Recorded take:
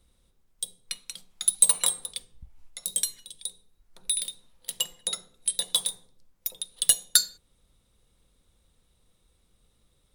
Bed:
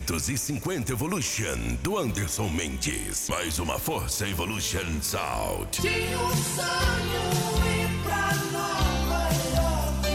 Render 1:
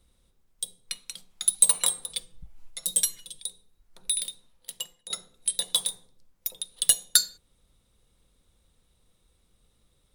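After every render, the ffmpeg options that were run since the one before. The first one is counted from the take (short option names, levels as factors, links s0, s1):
-filter_complex "[0:a]asettb=1/sr,asplit=3[s0][s1][s2];[s0]atrim=end=2.094[s3];[s1]atrim=start=2.09:end=3.39,asetpts=PTS-STARTPTS,afade=t=in:d=0.004:c=qsin,afade=t=out:st=1.296:d=0.004:c=qsin,aecho=1:1:6.1:0.92,atrim=end_sample=57330[s4];[s2]atrim=start=3.386[s5];[s3][s4]acrossfade=d=0.004:c1=hsin:c2=qsin[s6];[s6][s5]acrossfade=d=0.004:c1=qsin:c2=hsin,asplit=2[s7][s8];[s7]atrim=end=5.1,asetpts=PTS-STARTPTS,afade=t=out:st=4.23:d=0.87:silence=0.188365[s9];[s8]atrim=start=5.1,asetpts=PTS-STARTPTS,afade=t=in:d=0.004:c=hsin:silence=0.188365[s10];[s9][s10]concat=n=2:v=0:a=1"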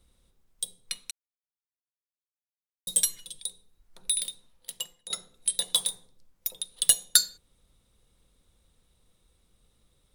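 -filter_complex "[0:a]asplit=3[s0][s1][s2];[s0]atrim=end=1.11,asetpts=PTS-STARTPTS,afade=t=out:st=1.106:d=0.004:c=hsin[s3];[s1]atrim=start=1.11:end=2.87,asetpts=PTS-STARTPTS,volume=0[s4];[s2]atrim=start=2.87,asetpts=PTS-STARTPTS,afade=t=in:d=0.004:c=hsin[s5];[s3][s4][s5]concat=n=3:v=0:a=1"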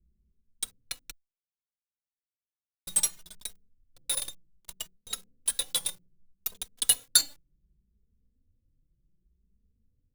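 -filter_complex "[0:a]acrossover=split=330[s0][s1];[s1]acrusher=bits=5:dc=4:mix=0:aa=0.000001[s2];[s0][s2]amix=inputs=2:normalize=0,asplit=2[s3][s4];[s4]adelay=2.9,afreqshift=0.65[s5];[s3][s5]amix=inputs=2:normalize=1"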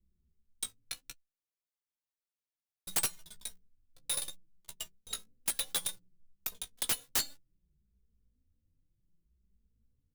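-af "flanger=delay=9.2:depth=9.5:regen=21:speed=0.67:shape=triangular,aeval=exprs='(mod(12.6*val(0)+1,2)-1)/12.6':c=same"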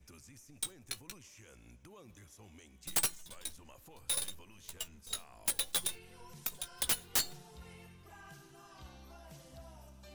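-filter_complex "[1:a]volume=0.0376[s0];[0:a][s0]amix=inputs=2:normalize=0"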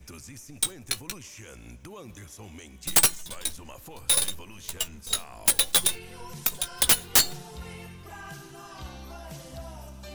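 -af "volume=3.98"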